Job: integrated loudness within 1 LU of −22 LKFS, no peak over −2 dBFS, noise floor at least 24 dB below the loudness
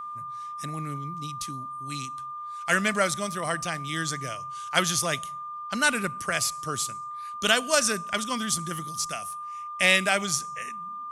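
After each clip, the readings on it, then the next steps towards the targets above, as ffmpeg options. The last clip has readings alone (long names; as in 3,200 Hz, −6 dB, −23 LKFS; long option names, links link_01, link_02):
interfering tone 1,200 Hz; level of the tone −34 dBFS; integrated loudness −27.5 LKFS; sample peak −4.5 dBFS; target loudness −22.0 LKFS
→ -af "bandreject=frequency=1200:width=30"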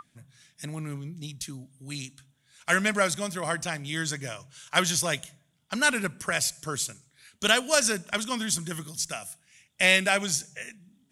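interfering tone none found; integrated loudness −26.5 LKFS; sample peak −4.5 dBFS; target loudness −22.0 LKFS
→ -af "volume=4.5dB,alimiter=limit=-2dB:level=0:latency=1"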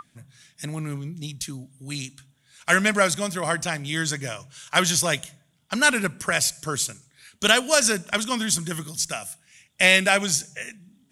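integrated loudness −22.5 LKFS; sample peak −2.0 dBFS; background noise floor −65 dBFS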